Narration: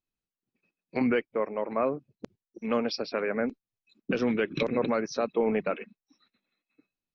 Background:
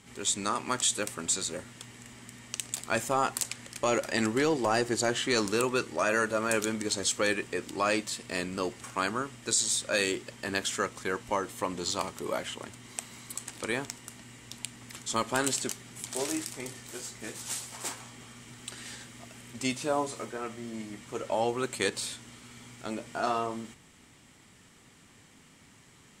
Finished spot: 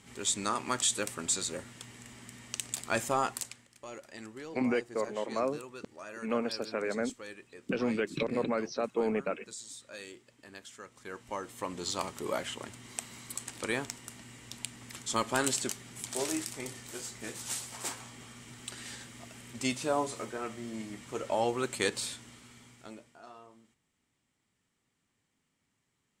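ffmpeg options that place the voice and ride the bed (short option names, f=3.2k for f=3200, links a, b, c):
-filter_complex "[0:a]adelay=3600,volume=-4dB[a];[1:a]volume=15.5dB,afade=t=out:st=3.15:d=0.52:silence=0.149624,afade=t=in:st=10.84:d=1.42:silence=0.141254,afade=t=out:st=22.03:d=1.15:silence=0.0891251[b];[a][b]amix=inputs=2:normalize=0"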